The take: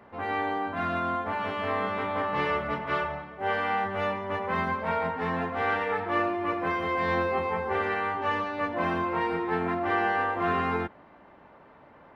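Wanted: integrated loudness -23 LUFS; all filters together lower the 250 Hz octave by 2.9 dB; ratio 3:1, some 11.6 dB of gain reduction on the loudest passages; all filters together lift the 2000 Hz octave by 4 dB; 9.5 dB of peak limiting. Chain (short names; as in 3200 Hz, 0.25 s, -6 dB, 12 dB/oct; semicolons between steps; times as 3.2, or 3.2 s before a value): bell 250 Hz -4.5 dB; bell 2000 Hz +5 dB; compressor 3:1, threshold -38 dBFS; gain +18.5 dB; limiter -15 dBFS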